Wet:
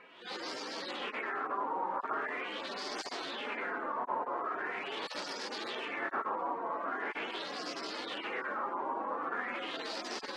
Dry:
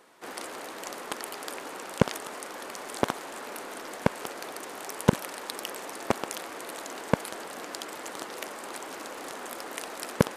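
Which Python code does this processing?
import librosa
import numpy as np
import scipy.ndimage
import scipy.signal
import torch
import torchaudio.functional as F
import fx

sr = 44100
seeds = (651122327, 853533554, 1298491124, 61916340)

y = fx.hpss_only(x, sr, part='harmonic')
y = fx.filter_lfo_lowpass(y, sr, shape='sine', hz=0.42, low_hz=950.0, high_hz=5100.0, q=4.8)
y = y * librosa.db_to_amplitude(2.0)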